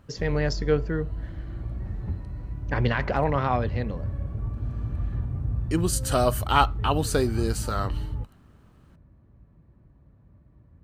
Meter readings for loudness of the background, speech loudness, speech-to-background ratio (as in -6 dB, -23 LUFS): -32.5 LUFS, -26.5 LUFS, 6.0 dB